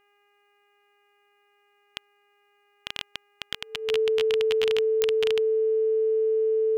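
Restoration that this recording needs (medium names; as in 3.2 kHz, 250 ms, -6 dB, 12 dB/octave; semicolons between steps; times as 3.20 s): de-click; de-hum 407.8 Hz, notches 7; band-stop 440 Hz, Q 30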